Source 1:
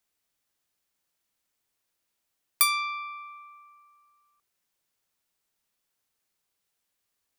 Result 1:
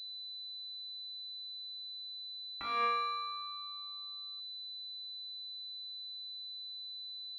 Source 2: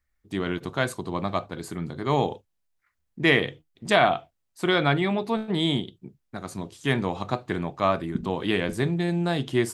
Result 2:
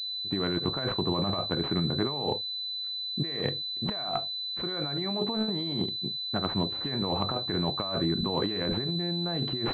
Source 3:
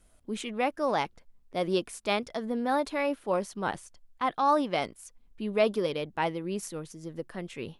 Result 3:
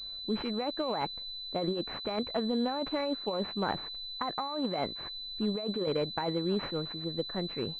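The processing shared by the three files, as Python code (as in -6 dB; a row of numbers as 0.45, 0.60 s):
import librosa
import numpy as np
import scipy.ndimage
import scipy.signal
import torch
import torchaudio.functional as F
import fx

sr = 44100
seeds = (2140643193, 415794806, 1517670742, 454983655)

y = fx.over_compress(x, sr, threshold_db=-31.0, ratio=-1.0)
y = fx.pwm(y, sr, carrier_hz=4000.0)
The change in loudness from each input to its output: -13.5, -3.5, -2.5 LU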